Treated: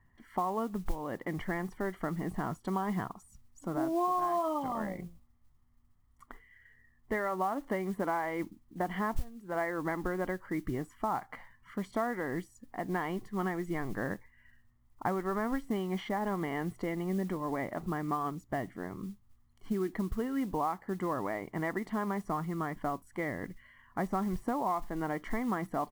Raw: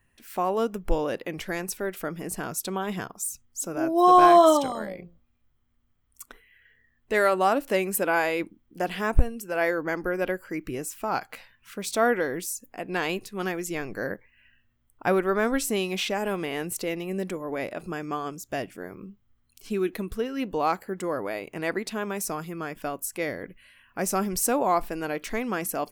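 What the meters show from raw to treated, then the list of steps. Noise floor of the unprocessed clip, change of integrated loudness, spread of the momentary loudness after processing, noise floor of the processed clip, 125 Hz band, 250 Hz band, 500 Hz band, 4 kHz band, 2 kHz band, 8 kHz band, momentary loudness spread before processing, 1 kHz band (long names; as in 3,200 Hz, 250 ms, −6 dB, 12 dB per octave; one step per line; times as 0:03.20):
−68 dBFS, −8.5 dB, 9 LU, −65 dBFS, −2.0 dB, −4.5 dB, −10.0 dB, −16.5 dB, −9.0 dB, −21.0 dB, 11 LU, −8.5 dB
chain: de-essing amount 60%
comb filter 1 ms, depth 54%
downward compressor 10 to 1, threshold −28 dBFS, peak gain reduction 20 dB
Savitzky-Golay smoothing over 41 samples
noise that follows the level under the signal 25 dB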